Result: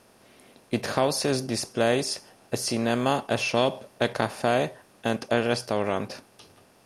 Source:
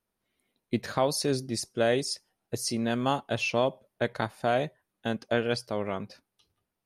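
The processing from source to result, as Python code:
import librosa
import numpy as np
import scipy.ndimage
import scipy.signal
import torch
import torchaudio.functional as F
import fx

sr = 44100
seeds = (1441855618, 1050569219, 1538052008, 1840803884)

y = fx.bin_compress(x, sr, power=0.6)
y = fx.dynamic_eq(y, sr, hz=3600.0, q=1.6, threshold_db=-47.0, ratio=4.0, max_db=6, at=(3.56, 4.14))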